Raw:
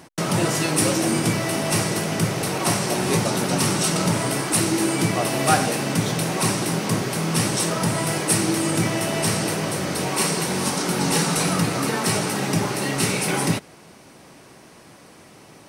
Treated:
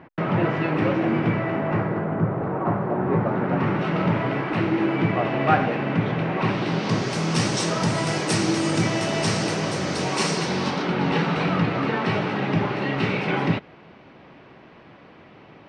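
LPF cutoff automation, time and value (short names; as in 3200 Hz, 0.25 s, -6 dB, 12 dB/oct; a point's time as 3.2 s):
LPF 24 dB/oct
1.28 s 2400 Hz
2.24 s 1400 Hz
2.96 s 1400 Hz
4.01 s 2600 Hz
6.36 s 2600 Hz
7.14 s 6700 Hz
10.32 s 6700 Hz
10.95 s 3200 Hz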